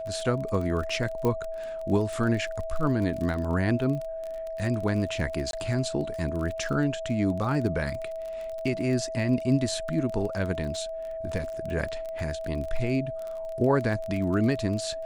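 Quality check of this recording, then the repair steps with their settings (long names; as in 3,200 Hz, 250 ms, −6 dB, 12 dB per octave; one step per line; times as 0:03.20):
surface crackle 26 per second −32 dBFS
whistle 650 Hz −32 dBFS
0:01.25: click −16 dBFS
0:05.51–0:05.53: drop-out 22 ms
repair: click removal
notch filter 650 Hz, Q 30
repair the gap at 0:05.51, 22 ms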